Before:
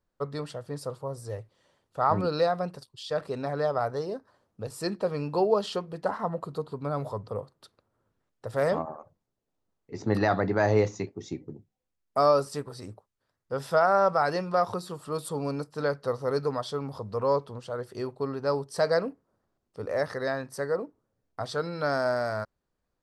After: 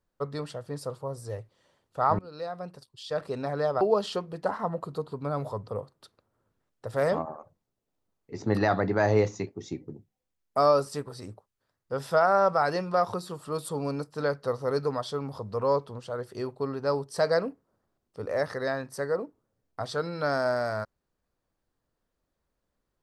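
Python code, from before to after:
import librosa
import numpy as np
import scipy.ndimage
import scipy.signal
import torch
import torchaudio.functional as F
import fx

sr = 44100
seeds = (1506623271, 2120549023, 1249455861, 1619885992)

y = fx.edit(x, sr, fx.fade_in_from(start_s=2.19, length_s=1.1, floor_db=-23.5),
    fx.cut(start_s=3.81, length_s=1.6), tone=tone)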